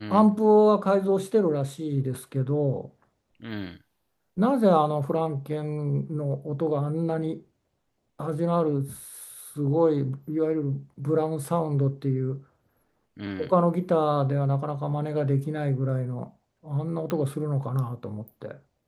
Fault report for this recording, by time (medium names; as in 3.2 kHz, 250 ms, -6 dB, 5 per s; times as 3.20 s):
17.10 s: pop -17 dBFS